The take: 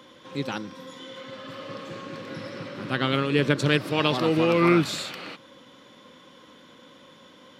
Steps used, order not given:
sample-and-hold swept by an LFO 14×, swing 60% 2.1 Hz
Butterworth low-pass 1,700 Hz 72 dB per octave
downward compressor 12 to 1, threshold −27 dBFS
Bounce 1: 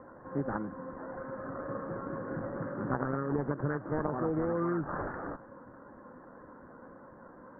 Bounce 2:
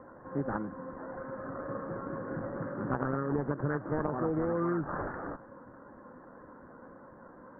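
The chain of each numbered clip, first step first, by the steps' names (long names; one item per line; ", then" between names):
downward compressor, then sample-and-hold swept by an LFO, then Butterworth low-pass
sample-and-hold swept by an LFO, then Butterworth low-pass, then downward compressor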